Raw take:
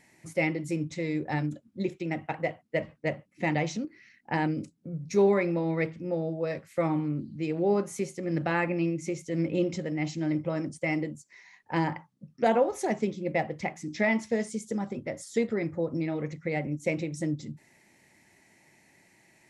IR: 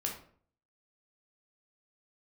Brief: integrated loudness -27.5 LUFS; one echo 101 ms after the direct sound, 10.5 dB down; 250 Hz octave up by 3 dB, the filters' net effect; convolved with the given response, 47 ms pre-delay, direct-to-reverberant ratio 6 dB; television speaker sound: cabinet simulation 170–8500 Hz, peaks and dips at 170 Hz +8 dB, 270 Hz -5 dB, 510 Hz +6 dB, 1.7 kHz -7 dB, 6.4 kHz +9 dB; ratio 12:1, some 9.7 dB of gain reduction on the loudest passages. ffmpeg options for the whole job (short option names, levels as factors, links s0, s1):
-filter_complex "[0:a]equalizer=f=250:t=o:g=4.5,acompressor=threshold=0.0501:ratio=12,aecho=1:1:101:0.299,asplit=2[s0][s1];[1:a]atrim=start_sample=2205,adelay=47[s2];[s1][s2]afir=irnorm=-1:irlink=0,volume=0.376[s3];[s0][s3]amix=inputs=2:normalize=0,highpass=f=170:w=0.5412,highpass=f=170:w=1.3066,equalizer=f=170:t=q:w=4:g=8,equalizer=f=270:t=q:w=4:g=-5,equalizer=f=510:t=q:w=4:g=6,equalizer=f=1700:t=q:w=4:g=-7,equalizer=f=6400:t=q:w=4:g=9,lowpass=f=8500:w=0.5412,lowpass=f=8500:w=1.3066,volume=1.33"